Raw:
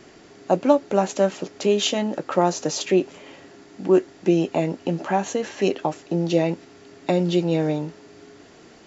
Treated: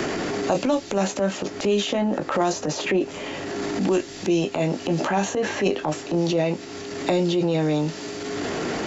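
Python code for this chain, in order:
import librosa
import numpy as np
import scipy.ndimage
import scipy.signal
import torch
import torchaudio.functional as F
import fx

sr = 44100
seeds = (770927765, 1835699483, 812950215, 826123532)

y = fx.doubler(x, sr, ms=20.0, db=-9.0)
y = fx.transient(y, sr, attack_db=-10, sustain_db=5)
y = fx.band_squash(y, sr, depth_pct=100)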